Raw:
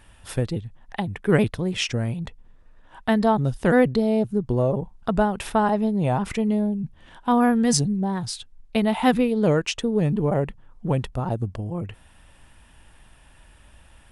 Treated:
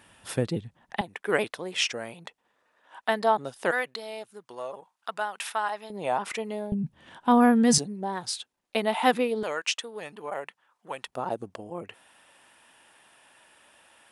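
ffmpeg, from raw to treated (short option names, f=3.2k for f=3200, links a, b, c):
-af "asetnsamples=n=441:p=0,asendcmd='1.01 highpass f 540;3.71 highpass f 1200;5.9 highpass f 540;6.72 highpass f 130;7.78 highpass f 410;9.43 highpass f 1000;11.07 highpass f 400',highpass=160"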